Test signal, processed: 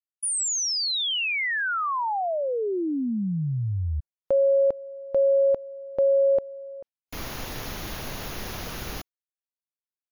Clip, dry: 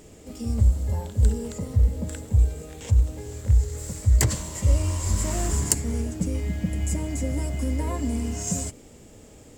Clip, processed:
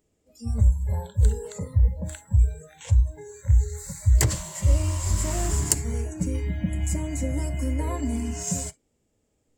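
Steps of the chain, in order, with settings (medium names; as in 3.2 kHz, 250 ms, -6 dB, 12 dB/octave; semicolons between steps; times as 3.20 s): spectral noise reduction 24 dB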